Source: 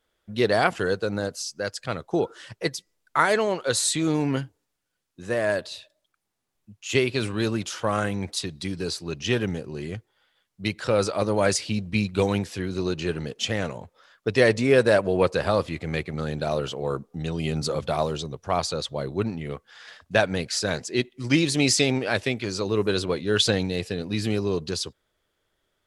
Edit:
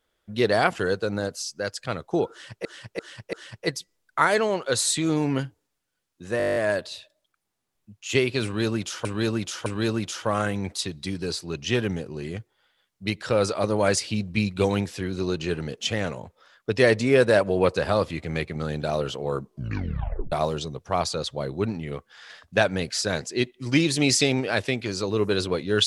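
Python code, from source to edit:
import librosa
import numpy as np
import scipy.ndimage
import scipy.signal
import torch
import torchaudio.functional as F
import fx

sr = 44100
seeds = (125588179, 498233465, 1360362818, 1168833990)

y = fx.edit(x, sr, fx.repeat(start_s=2.31, length_s=0.34, count=4),
    fx.stutter(start_s=5.36, slice_s=0.02, count=10),
    fx.repeat(start_s=7.24, length_s=0.61, count=3),
    fx.tape_stop(start_s=17.0, length_s=0.9), tone=tone)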